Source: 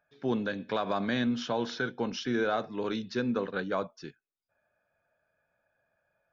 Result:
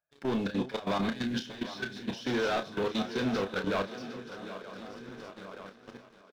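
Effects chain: backward echo that repeats 463 ms, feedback 65%, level -12 dB; waveshaping leveller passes 3; dynamic bell 4 kHz, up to +5 dB, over -44 dBFS, Q 0.82; compression 12:1, threshold -27 dBFS, peak gain reduction 8 dB; peak limiter -26 dBFS, peak gain reduction 6 dB; time-frequency box 1.23–2.08 s, 410–1400 Hz -15 dB; level held to a coarse grid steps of 16 dB; doubling 31 ms -8 dB; thinning echo 757 ms, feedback 40%, high-pass 180 Hz, level -13 dB; trim +2.5 dB

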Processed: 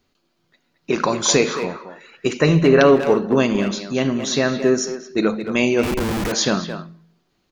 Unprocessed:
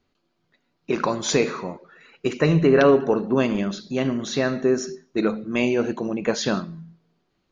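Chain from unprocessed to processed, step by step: treble shelf 4.5 kHz +8.5 dB; 5.83–6.32 s: Schmitt trigger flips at -30.5 dBFS; speakerphone echo 220 ms, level -8 dB; trim +3 dB

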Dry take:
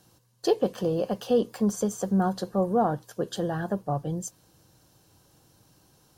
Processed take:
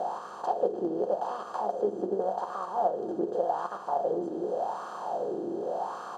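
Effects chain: spectral levelling over time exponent 0.2; treble shelf 3.2 kHz +10.5 dB; band-stop 460 Hz, Q 12; delay 258 ms -9 dB; gate -14 dBFS, range -9 dB; compression, threshold -25 dBFS, peak gain reduction 10.5 dB; wah-wah 0.87 Hz 330–1200 Hz, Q 5.4; dynamic bell 850 Hz, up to +4 dB, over -47 dBFS, Q 0.97; trim +7 dB

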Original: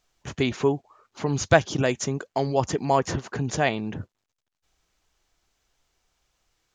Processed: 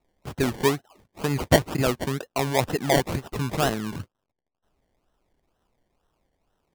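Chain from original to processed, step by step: decimation with a swept rate 27×, swing 60% 2.1 Hz

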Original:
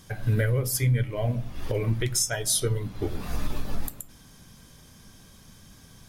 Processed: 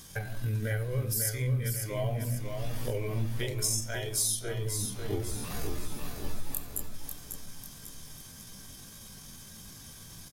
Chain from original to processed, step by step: treble shelf 4.6 kHz +9 dB; hum notches 60/120/180/240/300/360/420/480 Hz; compression 4:1, threshold -30 dBFS, peak gain reduction 13.5 dB; tempo 0.59×; feedback delay 545 ms, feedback 45%, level -6 dB

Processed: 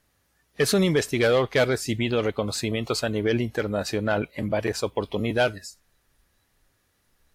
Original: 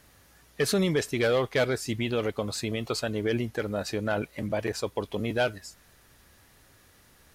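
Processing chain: spectral noise reduction 15 dB; trim +4 dB

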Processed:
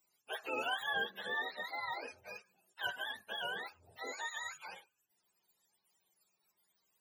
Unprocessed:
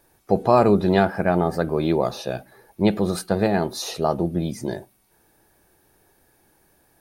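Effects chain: spectrum inverted on a logarithmic axis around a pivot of 560 Hz; 4.06–4.56 s: whistle 6.8 kHz -51 dBFS; differentiator

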